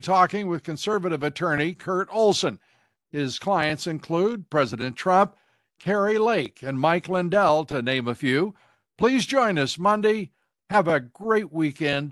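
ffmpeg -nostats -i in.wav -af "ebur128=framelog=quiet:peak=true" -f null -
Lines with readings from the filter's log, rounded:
Integrated loudness:
  I:         -23.5 LUFS
  Threshold: -33.9 LUFS
Loudness range:
  LRA:         2.3 LU
  Threshold: -43.8 LUFS
  LRA low:   -25.2 LUFS
  LRA high:  -22.9 LUFS
True peak:
  Peak:       -3.7 dBFS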